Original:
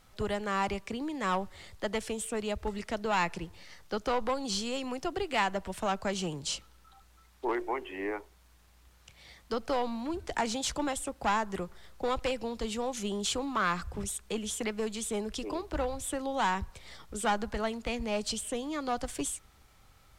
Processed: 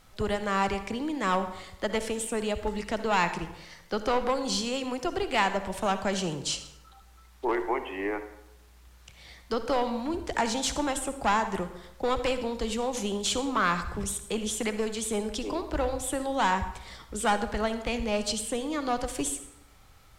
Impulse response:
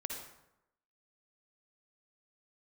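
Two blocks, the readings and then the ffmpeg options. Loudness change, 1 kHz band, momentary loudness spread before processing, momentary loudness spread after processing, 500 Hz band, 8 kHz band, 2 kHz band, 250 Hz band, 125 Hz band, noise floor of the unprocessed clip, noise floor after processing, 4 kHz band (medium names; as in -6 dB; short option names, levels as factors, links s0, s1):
+4.0 dB, +4.0 dB, 7 LU, 8 LU, +4.0 dB, +3.5 dB, +4.0 dB, +4.0 dB, +4.0 dB, -61 dBFS, -55 dBFS, +3.5 dB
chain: -filter_complex "[0:a]asplit=2[s0][s1];[1:a]atrim=start_sample=2205[s2];[s1][s2]afir=irnorm=-1:irlink=0,volume=0.668[s3];[s0][s3]amix=inputs=2:normalize=0"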